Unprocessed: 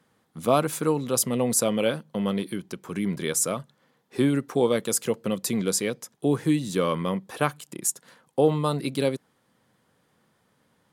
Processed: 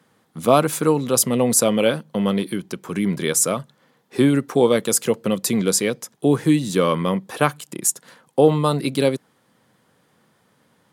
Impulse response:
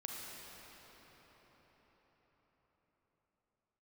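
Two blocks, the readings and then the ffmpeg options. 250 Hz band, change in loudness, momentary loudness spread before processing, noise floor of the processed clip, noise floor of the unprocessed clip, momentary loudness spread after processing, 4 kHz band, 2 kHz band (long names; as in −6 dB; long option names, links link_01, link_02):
+6.0 dB, +6.0 dB, 9 LU, −63 dBFS, −68 dBFS, 9 LU, +6.0 dB, +6.0 dB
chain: -af "highpass=85,volume=6dB"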